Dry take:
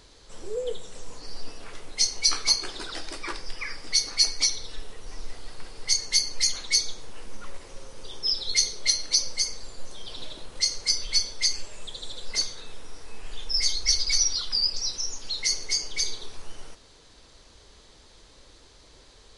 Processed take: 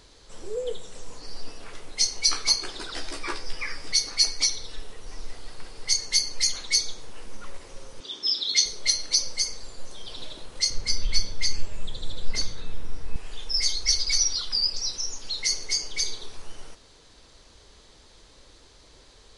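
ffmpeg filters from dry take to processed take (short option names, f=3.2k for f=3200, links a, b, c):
-filter_complex "[0:a]asettb=1/sr,asplit=3[a][b][c];[a]atrim=end=2.954[d];[b]atrim=start=2.95:end=3.92,asetpts=PTS-STARTPTS,afade=t=in:d=0.004:c=qsin,afade=t=out:st=0.966:d=0.004:c=qsin,asplit=2[e][f];[f]adelay=14,volume=-3dB[g];[e][g]amix=inputs=2:normalize=0,atrim=end_sample=42777[h];[c]atrim=start=3.916[i];[d][h]acrossfade=d=0.004:c1=hsin:c2=qsin[j];[j][i]acrossfade=d=0.004:c1=qsin:c2=hsin,asettb=1/sr,asplit=3[k][l][m];[k]atrim=end=8.004[n];[l]atrim=start=8:end=8.66,asetpts=PTS-STARTPTS,afade=t=in:d=0.004:c=qsin,afade=t=out:st=0.656:d=0.004:c=qsin,highpass=220,equalizer=f=280:t=q:w=4:g=7,equalizer=f=500:t=q:w=4:g=-7,equalizer=f=820:t=q:w=4:g=-5,equalizer=f=3.5k:t=q:w=4:g=9,lowpass=f=7.8k:w=0.5412,lowpass=f=7.8k:w=1.3066[o];[m]atrim=start=8.656[p];[n][o]acrossfade=d=0.004:c1=hsin:c2=qsin[q];[q][p]acrossfade=d=0.004:c1=qsin:c2=hsin,asettb=1/sr,asplit=3[r][s][t];[r]atrim=end=10.704[u];[s]atrim=start=10.7:end=13.16,asetpts=PTS-STARTPTS,afade=t=in:d=0.004:c=qsin,afade=t=out:st=2.456:d=0.004:c=qsin,bass=f=250:g=12,treble=f=4k:g=-5[v];[t]atrim=start=13.156[w];[u][v]acrossfade=d=0.004:c1=hsin:c2=qsin[x];[x][w]acrossfade=d=0.004:c1=qsin:c2=hsin"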